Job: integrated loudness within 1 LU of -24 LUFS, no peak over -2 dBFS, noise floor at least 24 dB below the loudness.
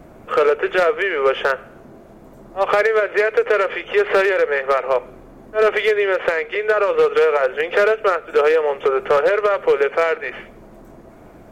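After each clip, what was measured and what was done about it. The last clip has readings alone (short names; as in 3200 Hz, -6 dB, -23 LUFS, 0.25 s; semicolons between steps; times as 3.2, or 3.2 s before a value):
clipped 2.2%; flat tops at -9.0 dBFS; loudness -18.0 LUFS; peak -9.0 dBFS; loudness target -24.0 LUFS
-> clip repair -9 dBFS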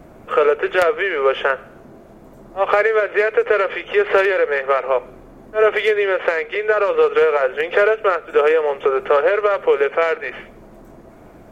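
clipped 0.0%; loudness -17.5 LUFS; peak -1.5 dBFS; loudness target -24.0 LUFS
-> gain -6.5 dB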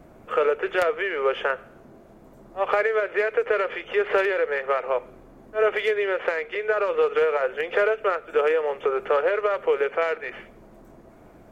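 loudness -24.0 LUFS; peak -8.0 dBFS; noise floor -50 dBFS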